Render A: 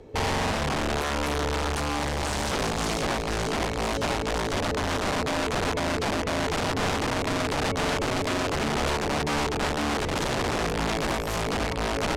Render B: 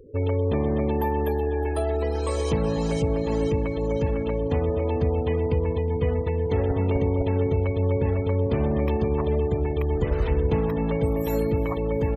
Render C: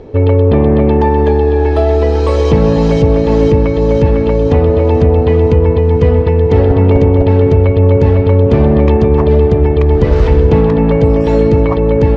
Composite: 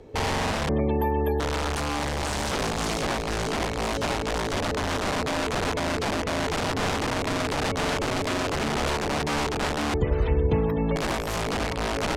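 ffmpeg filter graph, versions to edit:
-filter_complex "[1:a]asplit=2[s0][s1];[0:a]asplit=3[s2][s3][s4];[s2]atrim=end=0.692[s5];[s0]atrim=start=0.688:end=1.402[s6];[s3]atrim=start=1.398:end=9.942[s7];[s1]atrim=start=9.938:end=10.962[s8];[s4]atrim=start=10.958[s9];[s5][s6]acrossfade=d=0.004:c1=hsin:c2=hsin[s10];[s10][s7]acrossfade=d=0.004:c1=hsin:c2=hsin[s11];[s11][s8]acrossfade=d=0.004:c1=hsin:c2=hsin[s12];[s12][s9]acrossfade=d=0.004:c1=hsin:c2=hsin"

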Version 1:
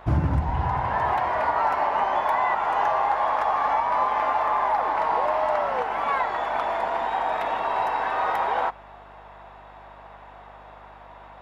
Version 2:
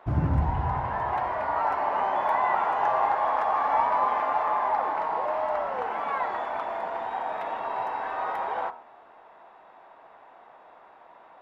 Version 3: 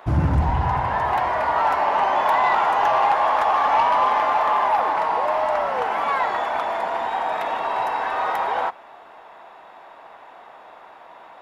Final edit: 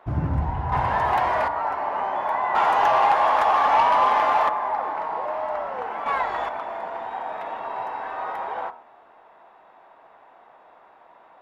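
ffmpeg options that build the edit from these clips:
-filter_complex "[2:a]asplit=2[s0][s1];[1:a]asplit=4[s2][s3][s4][s5];[s2]atrim=end=0.722[s6];[s0]atrim=start=0.718:end=1.482[s7];[s3]atrim=start=1.478:end=2.552[s8];[s1]atrim=start=2.548:end=4.492[s9];[s4]atrim=start=4.488:end=6.062[s10];[0:a]atrim=start=6.058:end=6.492[s11];[s5]atrim=start=6.488[s12];[s6][s7]acrossfade=d=0.004:c1=hsin:c2=hsin[s13];[s13][s8]acrossfade=d=0.004:c1=hsin:c2=hsin[s14];[s14][s9]acrossfade=d=0.004:c1=hsin:c2=hsin[s15];[s15][s10]acrossfade=d=0.004:c1=hsin:c2=hsin[s16];[s16][s11]acrossfade=d=0.004:c1=hsin:c2=hsin[s17];[s17][s12]acrossfade=d=0.004:c1=hsin:c2=hsin"

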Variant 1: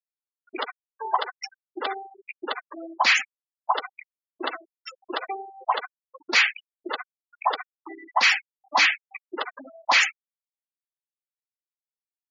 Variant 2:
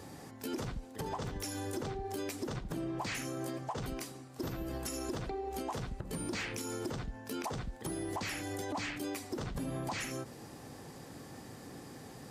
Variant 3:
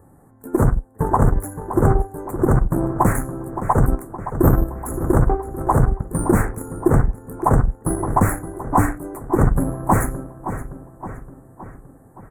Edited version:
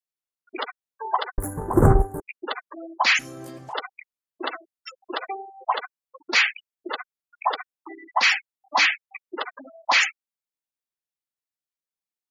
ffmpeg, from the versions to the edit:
-filter_complex "[0:a]asplit=3[s0][s1][s2];[s0]atrim=end=1.382[s3];[2:a]atrim=start=1.378:end=2.202[s4];[s1]atrim=start=2.198:end=3.192[s5];[1:a]atrim=start=3.188:end=3.732[s6];[s2]atrim=start=3.728[s7];[s3][s4]acrossfade=d=0.004:c1=hsin:c2=hsin[s8];[s8][s5]acrossfade=d=0.004:c1=hsin:c2=hsin[s9];[s9][s6]acrossfade=d=0.004:c1=hsin:c2=hsin[s10];[s10][s7]acrossfade=d=0.004:c1=hsin:c2=hsin"

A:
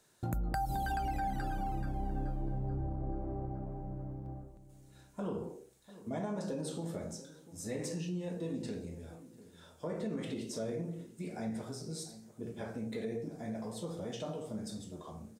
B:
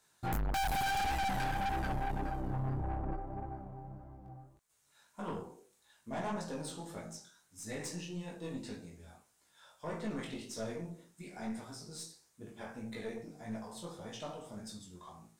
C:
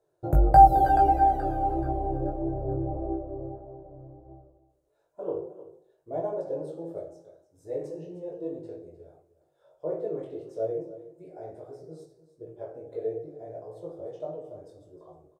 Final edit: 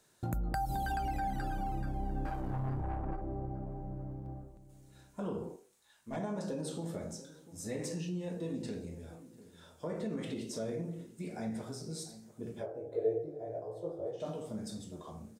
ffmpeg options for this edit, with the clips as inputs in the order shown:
-filter_complex "[1:a]asplit=2[s0][s1];[0:a]asplit=4[s2][s3][s4][s5];[s2]atrim=end=2.252[s6];[s0]atrim=start=2.248:end=3.212[s7];[s3]atrim=start=3.208:end=5.562[s8];[s1]atrim=start=5.558:end=6.162[s9];[s4]atrim=start=6.158:end=12.67[s10];[2:a]atrim=start=12.57:end=14.27[s11];[s5]atrim=start=14.17[s12];[s6][s7]acrossfade=d=0.004:c1=hsin:c2=hsin[s13];[s13][s8]acrossfade=d=0.004:c1=hsin:c2=hsin[s14];[s14][s9]acrossfade=d=0.004:c1=hsin:c2=hsin[s15];[s15][s10]acrossfade=d=0.004:c1=hsin:c2=hsin[s16];[s16][s11]acrossfade=d=0.1:c1=tri:c2=tri[s17];[s17][s12]acrossfade=d=0.1:c1=tri:c2=tri"

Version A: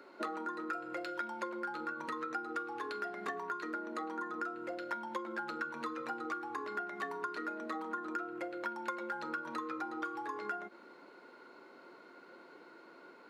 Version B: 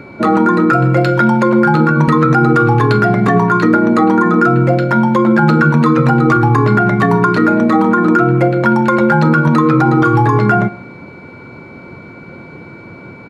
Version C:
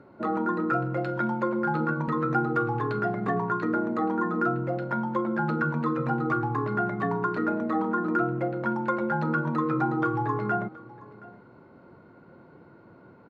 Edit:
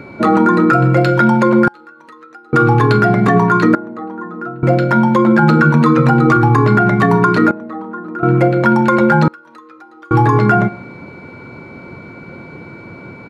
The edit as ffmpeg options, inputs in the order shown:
-filter_complex "[0:a]asplit=2[s0][s1];[2:a]asplit=2[s2][s3];[1:a]asplit=5[s4][s5][s6][s7][s8];[s4]atrim=end=1.682[s9];[s0]atrim=start=1.678:end=2.532[s10];[s5]atrim=start=2.528:end=3.752[s11];[s2]atrim=start=3.748:end=4.632[s12];[s6]atrim=start=4.628:end=7.512[s13];[s3]atrim=start=7.508:end=8.232[s14];[s7]atrim=start=8.228:end=9.282[s15];[s1]atrim=start=9.278:end=10.112[s16];[s8]atrim=start=10.108[s17];[s9][s10]acrossfade=d=0.004:c1=hsin:c2=hsin[s18];[s18][s11]acrossfade=d=0.004:c1=hsin:c2=hsin[s19];[s19][s12]acrossfade=d=0.004:c1=hsin:c2=hsin[s20];[s20][s13]acrossfade=d=0.004:c1=hsin:c2=hsin[s21];[s21][s14]acrossfade=d=0.004:c1=hsin:c2=hsin[s22];[s22][s15]acrossfade=d=0.004:c1=hsin:c2=hsin[s23];[s23][s16]acrossfade=d=0.004:c1=hsin:c2=hsin[s24];[s24][s17]acrossfade=d=0.004:c1=hsin:c2=hsin"

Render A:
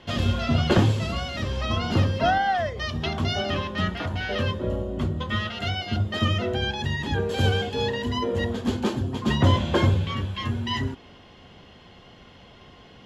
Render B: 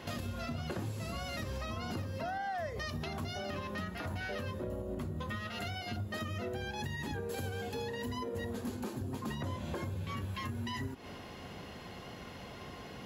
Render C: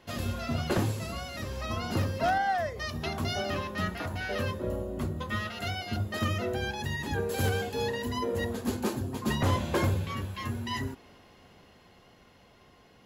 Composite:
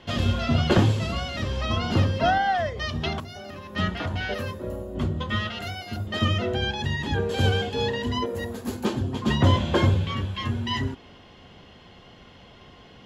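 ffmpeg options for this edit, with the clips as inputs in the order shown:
-filter_complex "[2:a]asplit=3[s0][s1][s2];[0:a]asplit=5[s3][s4][s5][s6][s7];[s3]atrim=end=3.202[s8];[1:a]atrim=start=3.198:end=3.762[s9];[s4]atrim=start=3.758:end=4.342[s10];[s0]atrim=start=4.338:end=4.952[s11];[s5]atrim=start=4.948:end=5.622[s12];[s1]atrim=start=5.618:end=6.072[s13];[s6]atrim=start=6.068:end=8.262[s14];[s2]atrim=start=8.258:end=8.852[s15];[s7]atrim=start=8.848[s16];[s8][s9]acrossfade=d=0.004:c1=hsin:c2=hsin[s17];[s17][s10]acrossfade=d=0.004:c1=hsin:c2=hsin[s18];[s18][s11]acrossfade=d=0.004:c1=hsin:c2=hsin[s19];[s19][s12]acrossfade=d=0.004:c1=hsin:c2=hsin[s20];[s20][s13]acrossfade=d=0.004:c1=hsin:c2=hsin[s21];[s21][s14]acrossfade=d=0.004:c1=hsin:c2=hsin[s22];[s22][s15]acrossfade=d=0.004:c1=hsin:c2=hsin[s23];[s23][s16]acrossfade=d=0.004:c1=hsin:c2=hsin"

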